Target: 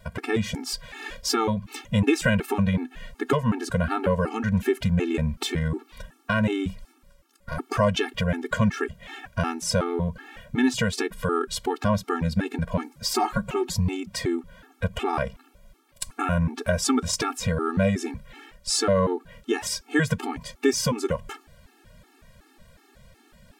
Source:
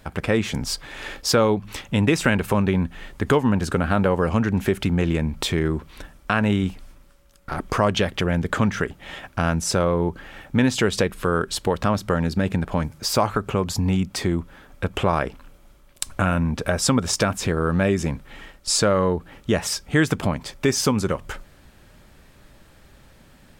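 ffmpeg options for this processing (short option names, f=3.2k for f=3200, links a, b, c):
-filter_complex "[0:a]asettb=1/sr,asplit=3[a][b][c];[a]atrim=end=13.134[d];[b]atrim=start=13.13:end=13.75,asetpts=PTS-STARTPTS,afade=t=in:d=0.004:c=qsin,afade=t=out:st=0.616:d=0.004:c=qsin,aecho=1:1:5.5:0.73,atrim=end_sample=27342[e];[c]atrim=start=13.746[f];[d][e]acrossfade=d=0.004:c1=hsin:c2=qsin[g];[g][f]acrossfade=d=0.004:c1=qsin:c2=hsin,afftfilt=real='re*gt(sin(2*PI*2.7*pts/sr)*(1-2*mod(floor(b*sr/1024/230),2)),0)':imag='im*gt(sin(2*PI*2.7*pts/sr)*(1-2*mod(floor(b*sr/1024/230),2)),0)':win_size=1024:overlap=0.75"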